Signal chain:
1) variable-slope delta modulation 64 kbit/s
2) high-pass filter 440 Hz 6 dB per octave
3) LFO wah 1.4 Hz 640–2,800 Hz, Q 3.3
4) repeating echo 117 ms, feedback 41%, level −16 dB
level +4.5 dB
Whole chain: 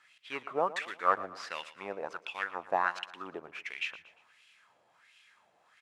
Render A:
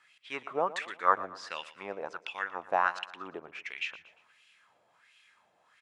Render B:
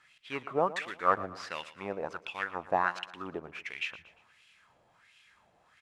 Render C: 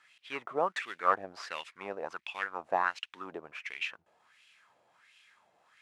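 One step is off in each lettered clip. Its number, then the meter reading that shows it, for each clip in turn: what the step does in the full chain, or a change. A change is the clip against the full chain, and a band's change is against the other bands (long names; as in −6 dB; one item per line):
1, change in crest factor +2.0 dB
2, 125 Hz band +9.0 dB
4, echo-to-direct ratio −15.0 dB to none audible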